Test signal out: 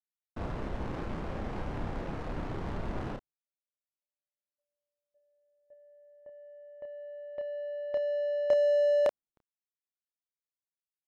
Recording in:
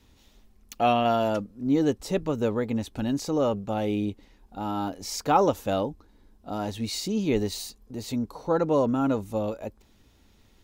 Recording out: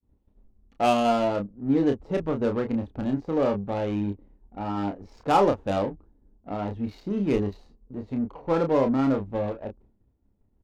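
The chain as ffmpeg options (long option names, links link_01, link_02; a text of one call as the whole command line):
ffmpeg -i in.wav -filter_complex "[0:a]adynamicsmooth=sensitivity=2.5:basefreq=630,agate=range=-33dB:threshold=-52dB:ratio=3:detection=peak,asplit=2[link_01][link_02];[link_02]adelay=30,volume=-5.5dB[link_03];[link_01][link_03]amix=inputs=2:normalize=0" out.wav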